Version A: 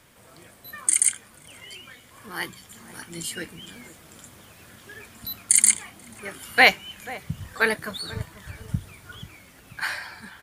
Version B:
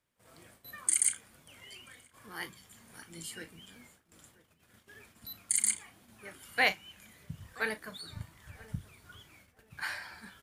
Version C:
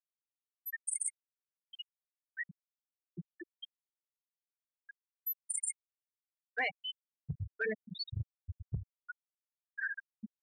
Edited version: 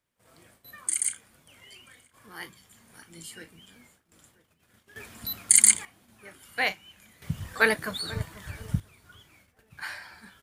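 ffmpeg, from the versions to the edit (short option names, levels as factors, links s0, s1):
-filter_complex "[0:a]asplit=2[s0][s1];[1:a]asplit=3[s2][s3][s4];[s2]atrim=end=4.962[s5];[s0]atrim=start=4.958:end=5.852[s6];[s3]atrim=start=5.848:end=7.222[s7];[s1]atrim=start=7.218:end=8.802[s8];[s4]atrim=start=8.798[s9];[s5][s6]acrossfade=d=0.004:c1=hsin:c2=hsin[s10];[s10][s7]acrossfade=d=0.004:c1=hsin:c2=hsin[s11];[s11][s8]acrossfade=d=0.004:c1=hsin:c2=hsin[s12];[s12][s9]acrossfade=d=0.004:c1=hsin:c2=hsin"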